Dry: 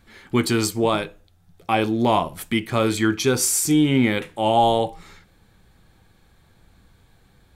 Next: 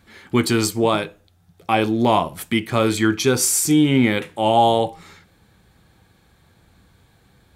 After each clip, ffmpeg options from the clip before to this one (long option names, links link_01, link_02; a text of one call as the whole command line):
ffmpeg -i in.wav -af "highpass=56,volume=2dB" out.wav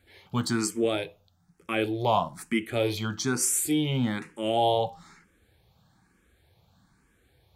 ffmpeg -i in.wav -filter_complex "[0:a]asplit=2[link_01][link_02];[link_02]afreqshift=1.1[link_03];[link_01][link_03]amix=inputs=2:normalize=1,volume=-5.5dB" out.wav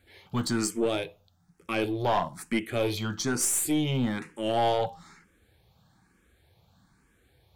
ffmpeg -i in.wav -af "aeval=exprs='(tanh(7.94*val(0)+0.3)-tanh(0.3))/7.94':channel_layout=same,volume=1dB" out.wav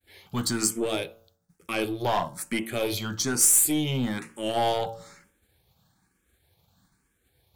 ffmpeg -i in.wav -af "agate=range=-33dB:threshold=-58dB:ratio=3:detection=peak,bandreject=frequency=113:width_type=h:width=4,bandreject=frequency=226:width_type=h:width=4,bandreject=frequency=339:width_type=h:width=4,bandreject=frequency=452:width_type=h:width=4,bandreject=frequency=565:width_type=h:width=4,bandreject=frequency=678:width_type=h:width=4,bandreject=frequency=791:width_type=h:width=4,bandreject=frequency=904:width_type=h:width=4,bandreject=frequency=1017:width_type=h:width=4,bandreject=frequency=1130:width_type=h:width=4,bandreject=frequency=1243:width_type=h:width=4,bandreject=frequency=1356:width_type=h:width=4,bandreject=frequency=1469:width_type=h:width=4,bandreject=frequency=1582:width_type=h:width=4,crystalizer=i=1.5:c=0" out.wav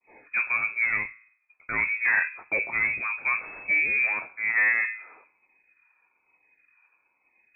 ffmpeg -i in.wav -af "lowpass=frequency=2200:width_type=q:width=0.5098,lowpass=frequency=2200:width_type=q:width=0.6013,lowpass=frequency=2200:width_type=q:width=0.9,lowpass=frequency=2200:width_type=q:width=2.563,afreqshift=-2600,volume=2.5dB" -ar 48000 -c:a libvorbis -b:a 192k out.ogg